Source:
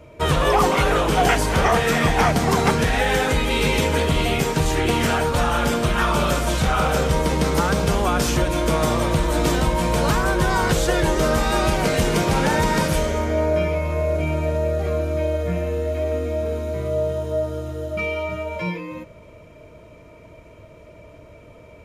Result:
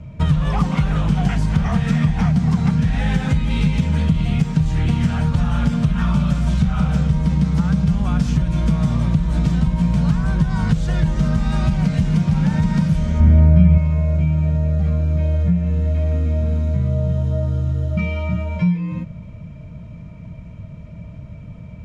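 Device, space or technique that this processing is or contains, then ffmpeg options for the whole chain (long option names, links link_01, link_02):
jukebox: -filter_complex "[0:a]lowpass=6700,lowshelf=frequency=260:width_type=q:width=3:gain=13,acompressor=threshold=-13dB:ratio=4,asettb=1/sr,asplit=3[link_01][link_02][link_03];[link_01]atrim=end=13.204[link_04];[link_02]atrim=start=13.2:end=13.78,asetpts=PTS-STARTPTS,afade=type=in:duration=0.004:curve=qsin,afade=type=out:start_time=0.576:duration=0.004:curve=qsin,bass=frequency=250:gain=8,treble=frequency=4000:gain=-6[link_05];[link_03]atrim=start=13.776[link_06];[link_04][link_05]acrossfade=duration=0.004:curve1=hsin:curve2=qsin[link_07];[link_07][link_06]acrossfade=duration=0.004:curve1=qsin:curve2=hsin,volume=-2dB"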